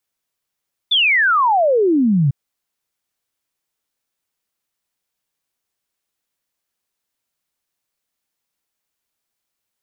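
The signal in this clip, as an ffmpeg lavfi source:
-f lavfi -i "aevalsrc='0.266*clip(min(t,1.4-t)/0.01,0,1)*sin(2*PI*3600*1.4/log(130/3600)*(exp(log(130/3600)*t/1.4)-1))':d=1.4:s=44100"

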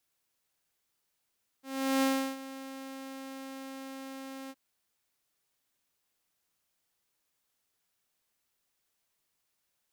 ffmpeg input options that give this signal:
-f lavfi -i "aevalsrc='0.0841*(2*mod(268*t,1)-1)':d=2.915:s=44100,afade=t=in:d=0.389,afade=t=out:st=0.389:d=0.343:silence=0.141,afade=t=out:st=2.87:d=0.045"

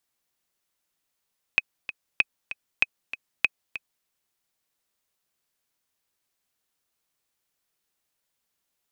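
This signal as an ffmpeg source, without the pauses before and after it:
-f lavfi -i "aevalsrc='pow(10,(-5.5-13.5*gte(mod(t,2*60/193),60/193))/20)*sin(2*PI*2530*mod(t,60/193))*exp(-6.91*mod(t,60/193)/0.03)':d=2.48:s=44100"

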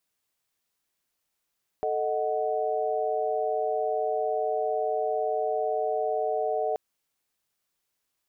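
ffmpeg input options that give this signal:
-f lavfi -i "aevalsrc='0.0355*(sin(2*PI*440*t)+sin(2*PI*622.25*t)+sin(2*PI*739.99*t))':d=4.93:s=44100"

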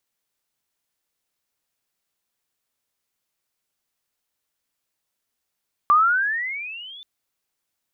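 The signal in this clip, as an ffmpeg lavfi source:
-f lavfi -i "aevalsrc='pow(10,(-11-27.5*t/1.13)/20)*sin(2*PI*1160*1.13/(19.5*log(2)/12)*(exp(19.5*log(2)/12*t/1.13)-1))':d=1.13:s=44100"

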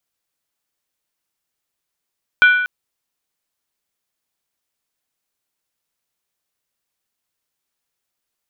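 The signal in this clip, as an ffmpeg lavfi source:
-f lavfi -i "aevalsrc='0.531*pow(10,-3*t/0.97)*sin(2*PI*1480*t)+0.211*pow(10,-3*t/0.768)*sin(2*PI*2359.1*t)+0.0841*pow(10,-3*t/0.664)*sin(2*PI*3161.3*t)+0.0335*pow(10,-3*t/0.64)*sin(2*PI*3398.1*t)+0.0133*pow(10,-3*t/0.596)*sin(2*PI*3926.4*t)':d=0.24:s=44100"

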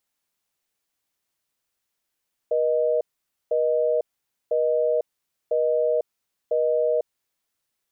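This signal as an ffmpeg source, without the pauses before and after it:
-f lavfi -i "aevalsrc='0.0841*(sin(2*PI*480*t)+sin(2*PI*620*t))*clip(min(mod(t,1),0.5-mod(t,1))/0.005,0,1)':d=4.98:s=44100"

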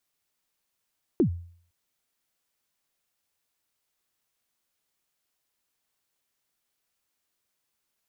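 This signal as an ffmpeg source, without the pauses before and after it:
-f lavfi -i "aevalsrc='0.178*pow(10,-3*t/0.53)*sin(2*PI*(400*0.095/log(86/400)*(exp(log(86/400)*min(t,0.095)/0.095)-1)+86*max(t-0.095,0)))':d=0.51:s=44100"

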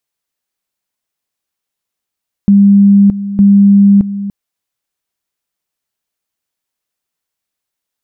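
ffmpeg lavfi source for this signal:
-f lavfi -i "aevalsrc='pow(10,(-2.5-13.5*gte(mod(t,0.91),0.62))/20)*sin(2*PI*200*t)':d=1.82:s=44100"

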